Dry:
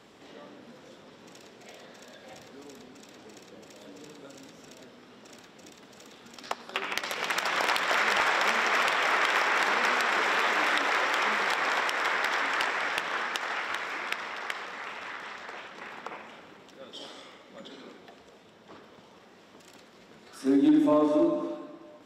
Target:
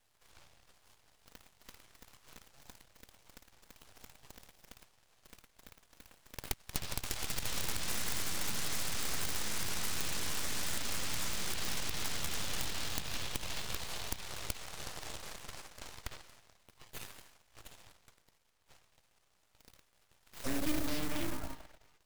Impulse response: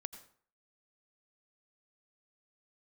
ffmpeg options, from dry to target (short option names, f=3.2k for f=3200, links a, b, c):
-filter_complex "[0:a]aeval=exprs='0.188*(cos(1*acos(clip(val(0)/0.188,-1,1)))-cos(1*PI/2))+0.0422*(cos(6*acos(clip(val(0)/0.188,-1,1)))-cos(6*PI/2))+0.0266*(cos(7*acos(clip(val(0)/0.188,-1,1)))-cos(7*PI/2))+0.0841*(cos(8*acos(clip(val(0)/0.188,-1,1)))-cos(8*PI/2))':c=same,acrossover=split=230[a][b];[a]acrusher=bits=5:mode=log:mix=0:aa=0.000001[c];[b]acompressor=threshold=-37dB:ratio=6[d];[c][d]amix=inputs=2:normalize=0,crystalizer=i=4:c=0,aeval=exprs='abs(val(0))':c=same,volume=-6dB"